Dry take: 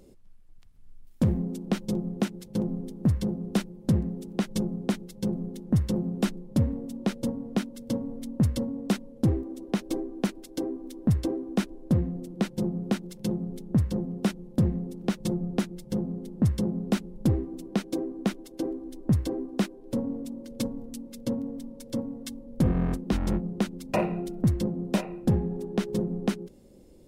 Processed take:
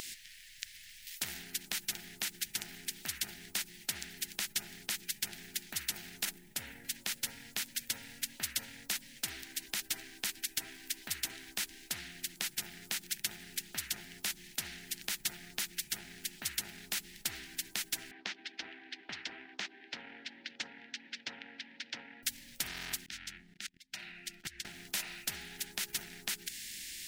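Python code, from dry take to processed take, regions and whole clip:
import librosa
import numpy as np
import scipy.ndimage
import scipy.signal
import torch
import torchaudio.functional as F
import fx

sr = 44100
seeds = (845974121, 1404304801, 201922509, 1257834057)

y = fx.chain(x, sr, fx.curve_eq(hz=(800.0, 4500.0, 11000.0), db=(0, -16, -5)),
    fx.sustainer(db_per_s=87.0), at=(6.25, 6.85))
y = fx.chain(y, sr, fx.cabinet(low_hz=220.0, low_slope=24, high_hz=2700.0, hz=(430.0, 780.0, 1800.0), db=(4, 9, 4)),
    fx.doppler_dist(depth_ms=0.11), at=(18.11, 22.23))
y = fx.chain(y, sr, fx.high_shelf(hz=5000.0, db=-11.0),
    fx.level_steps(step_db=19),
    fx.upward_expand(threshold_db=-53.0, expansion=1.5), at=(23.06, 24.65))
y = scipy.signal.sosfilt(scipy.signal.ellip(4, 1.0, 40, 1800.0, 'highpass', fs=sr, output='sos'), y)
y = fx.peak_eq(y, sr, hz=11000.0, db=-8.0, octaves=1.0)
y = fx.spectral_comp(y, sr, ratio=4.0)
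y = y * 10.0 ** (7.0 / 20.0)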